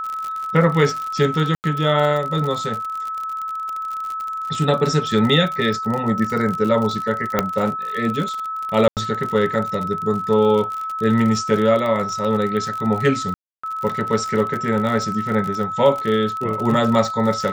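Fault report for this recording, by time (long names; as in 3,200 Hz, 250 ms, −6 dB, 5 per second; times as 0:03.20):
surface crackle 48 per second −24 dBFS
whistle 1,300 Hz −24 dBFS
0:01.55–0:01.64: drop-out 89 ms
0:07.39: click −3 dBFS
0:08.88–0:08.97: drop-out 88 ms
0:13.34–0:13.63: drop-out 295 ms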